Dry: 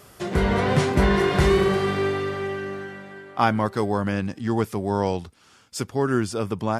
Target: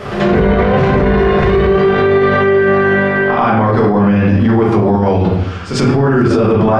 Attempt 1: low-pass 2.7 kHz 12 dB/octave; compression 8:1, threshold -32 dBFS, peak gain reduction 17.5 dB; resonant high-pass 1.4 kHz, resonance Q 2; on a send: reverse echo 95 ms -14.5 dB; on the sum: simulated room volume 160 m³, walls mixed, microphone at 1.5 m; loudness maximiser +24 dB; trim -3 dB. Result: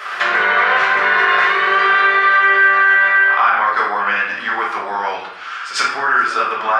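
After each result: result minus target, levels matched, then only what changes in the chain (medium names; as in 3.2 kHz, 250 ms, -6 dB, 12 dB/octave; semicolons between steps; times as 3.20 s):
compression: peak gain reduction +6 dB; 1 kHz band +4.0 dB
change: compression 8:1, threshold -25 dBFS, peak gain reduction 11 dB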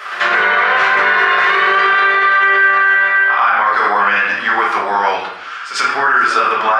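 1 kHz band +4.5 dB
remove: resonant high-pass 1.4 kHz, resonance Q 2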